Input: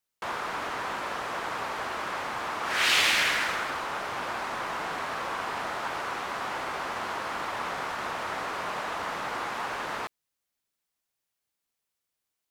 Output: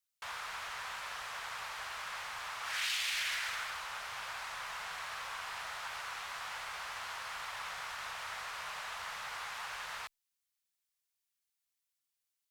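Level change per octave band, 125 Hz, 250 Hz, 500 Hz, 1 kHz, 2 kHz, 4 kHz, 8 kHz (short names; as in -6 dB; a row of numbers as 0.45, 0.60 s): -15.5 dB, under -25 dB, -18.0 dB, -11.5 dB, -9.0 dB, -8.5 dB, -6.5 dB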